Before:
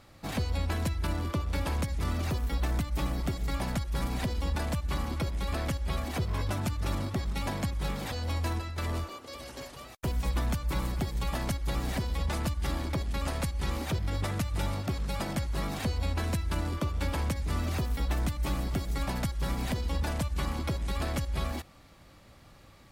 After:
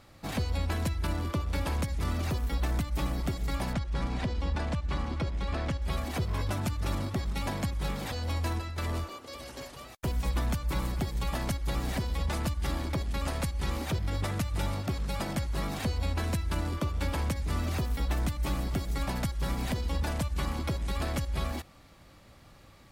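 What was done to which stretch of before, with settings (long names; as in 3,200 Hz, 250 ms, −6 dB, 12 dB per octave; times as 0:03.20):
0:03.73–0:05.82: high-frequency loss of the air 86 metres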